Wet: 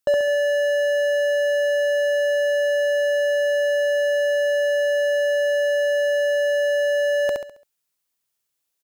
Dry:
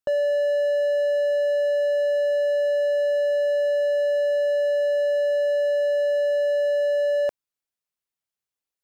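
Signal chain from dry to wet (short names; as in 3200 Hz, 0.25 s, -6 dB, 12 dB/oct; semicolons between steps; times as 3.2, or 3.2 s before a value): high shelf 4300 Hz +7 dB; feedback echo 68 ms, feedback 38%, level -3 dB; gain +4.5 dB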